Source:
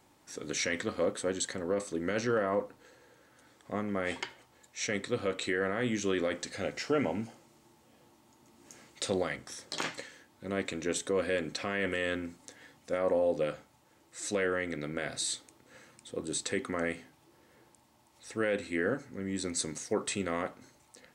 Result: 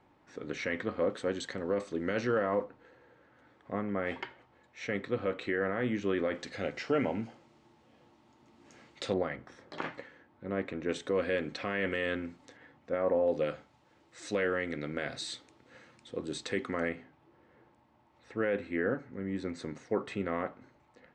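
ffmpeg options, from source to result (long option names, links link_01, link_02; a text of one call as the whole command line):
ffmpeg -i in.wav -af "asetnsamples=nb_out_samples=441:pad=0,asendcmd='1.1 lowpass f 3800;2.64 lowpass f 2300;6.34 lowpass f 3800;9.13 lowpass f 1800;10.89 lowpass f 3500;12.57 lowpass f 2000;13.28 lowpass f 4200;16.89 lowpass f 2100',lowpass=2300" out.wav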